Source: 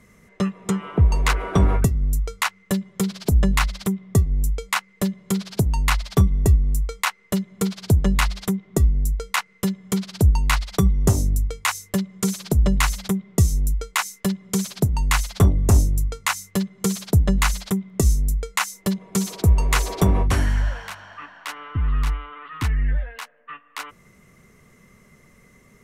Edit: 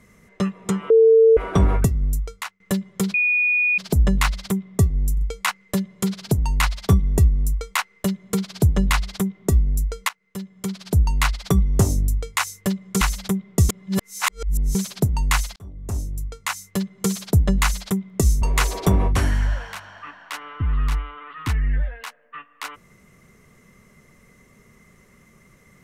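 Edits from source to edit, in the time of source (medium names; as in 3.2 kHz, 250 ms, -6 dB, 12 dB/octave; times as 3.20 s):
0.90–1.37 s: bleep 449 Hz -9 dBFS
2.08–2.60 s: fade out, to -23 dB
3.14 s: add tone 2.46 kHz -16 dBFS 0.64 s
4.49 s: stutter 0.04 s, 3 plays
9.37–10.46 s: fade in, from -20 dB
12.29–12.81 s: delete
13.49–14.55 s: reverse
15.36–16.80 s: fade in
18.22–19.57 s: delete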